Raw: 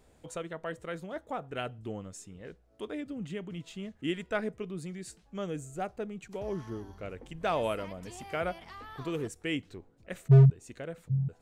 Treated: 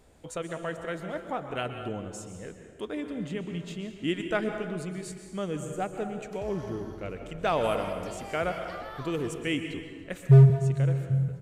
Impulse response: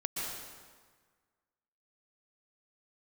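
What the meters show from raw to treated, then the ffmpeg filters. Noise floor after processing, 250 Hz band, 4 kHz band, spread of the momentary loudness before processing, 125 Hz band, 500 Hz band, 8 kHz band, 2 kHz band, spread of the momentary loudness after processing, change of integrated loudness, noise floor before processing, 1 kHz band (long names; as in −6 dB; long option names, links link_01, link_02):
−47 dBFS, +4.0 dB, +4.0 dB, 14 LU, +4.0 dB, +4.0 dB, +4.0 dB, +4.0 dB, 13 LU, +3.5 dB, −64 dBFS, +4.5 dB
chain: -filter_complex "[0:a]asplit=2[link_01][link_02];[1:a]atrim=start_sample=2205[link_03];[link_02][link_03]afir=irnorm=-1:irlink=0,volume=-5.5dB[link_04];[link_01][link_04]amix=inputs=2:normalize=0,aresample=32000,aresample=44100"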